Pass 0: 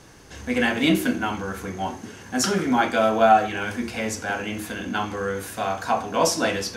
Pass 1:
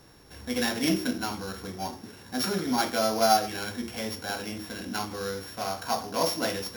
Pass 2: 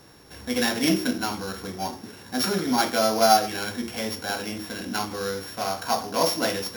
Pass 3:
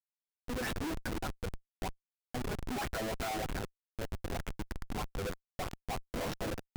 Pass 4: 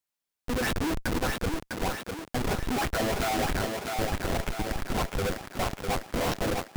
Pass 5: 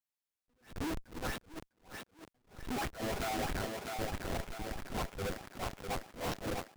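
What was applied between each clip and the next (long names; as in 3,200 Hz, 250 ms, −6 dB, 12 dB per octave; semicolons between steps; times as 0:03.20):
samples sorted by size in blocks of 8 samples; level −6 dB
low-shelf EQ 62 Hz −9.5 dB; level +4 dB
LFO wah 3.2 Hz 330–3,100 Hz, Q 2.7; comparator with hysteresis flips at −34 dBFS; level −1 dB
feedback echo with a high-pass in the loop 652 ms, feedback 57%, high-pass 180 Hz, level −4 dB; level +8 dB
level that may rise only so fast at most 180 dB per second; level −8 dB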